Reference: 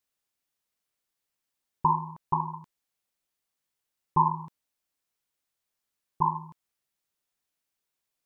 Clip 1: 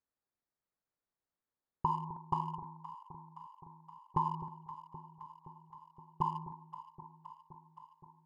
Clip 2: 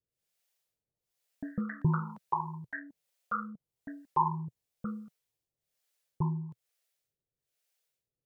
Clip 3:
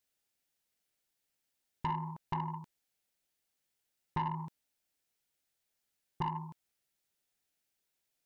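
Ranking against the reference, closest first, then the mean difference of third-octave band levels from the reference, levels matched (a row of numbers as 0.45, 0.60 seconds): 2, 1, 3; 3.5, 5.0, 7.5 decibels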